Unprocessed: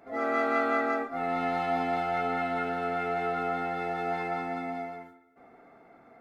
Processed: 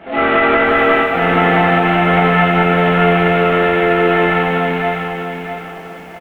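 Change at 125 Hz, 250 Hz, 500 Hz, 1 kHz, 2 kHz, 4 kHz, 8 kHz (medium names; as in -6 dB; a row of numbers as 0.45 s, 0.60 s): +25.5 dB, +18.5 dB, +17.0 dB, +14.5 dB, +19.5 dB, +23.0 dB, no reading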